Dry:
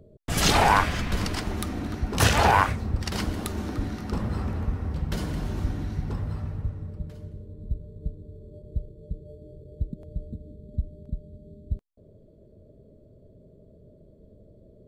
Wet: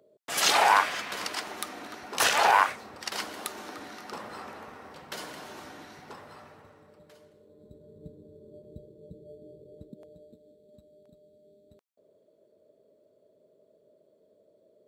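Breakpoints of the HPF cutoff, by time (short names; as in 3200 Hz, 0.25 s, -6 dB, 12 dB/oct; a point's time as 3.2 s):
7.37 s 600 Hz
8 s 240 Hz
9.6 s 240 Hz
10.42 s 620 Hz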